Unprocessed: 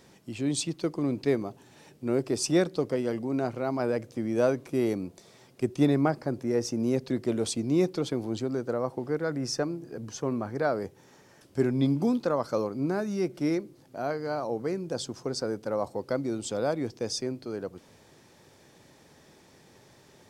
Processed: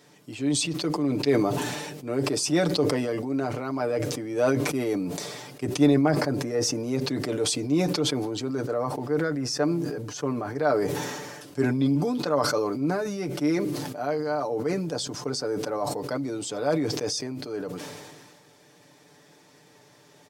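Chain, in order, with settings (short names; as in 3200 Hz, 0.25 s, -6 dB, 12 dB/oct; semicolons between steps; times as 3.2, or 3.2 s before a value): HPF 190 Hz 6 dB/oct; comb 6.8 ms, depth 72%; sustainer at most 32 dB/s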